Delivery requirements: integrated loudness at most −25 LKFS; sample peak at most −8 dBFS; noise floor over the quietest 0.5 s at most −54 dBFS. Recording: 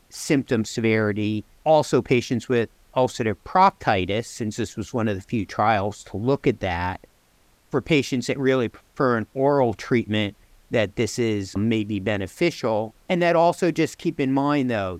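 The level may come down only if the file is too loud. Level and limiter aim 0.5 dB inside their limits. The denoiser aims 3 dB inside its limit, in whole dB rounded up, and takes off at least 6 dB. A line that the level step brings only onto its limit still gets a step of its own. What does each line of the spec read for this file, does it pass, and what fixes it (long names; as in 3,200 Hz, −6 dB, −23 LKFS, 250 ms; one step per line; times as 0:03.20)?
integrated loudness −23.0 LKFS: out of spec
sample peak −4.0 dBFS: out of spec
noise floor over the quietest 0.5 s −60 dBFS: in spec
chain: level −2.5 dB
brickwall limiter −8.5 dBFS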